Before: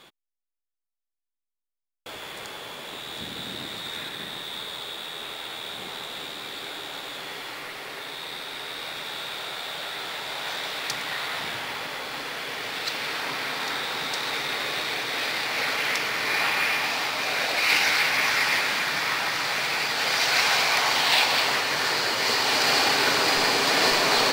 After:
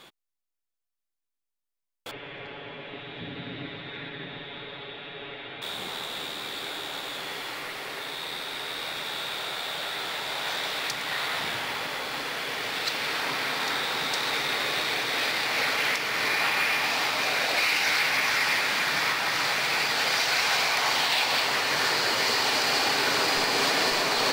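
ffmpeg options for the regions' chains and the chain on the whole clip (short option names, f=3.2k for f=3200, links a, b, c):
-filter_complex "[0:a]asettb=1/sr,asplit=3[a][b][c];[a]atrim=end=2.114[d];[b]atrim=start=2.11:end=5.62,asetpts=PTS-STARTPTS,afade=t=in:d=0.004:c=qsin,afade=t=out:st=3.506:d=0.004:c=qsin,lowpass=f=2.7k:w=0.5412,lowpass=f=2.7k:w=1.3066,equalizer=f=1.1k:t=o:w=1.4:g=-9,aecho=1:1:7.1:0.78,atrim=end_sample=154791[e];[c]atrim=start=5.616[f];[d][e]acrossfade=d=0.004:c1=hsin:c2=qsin[g];[g][f]acrossfade=d=0.004:c1=qsin:c2=hsin,acontrast=50,alimiter=limit=-10dB:level=0:latency=1:release=287,volume=-5dB"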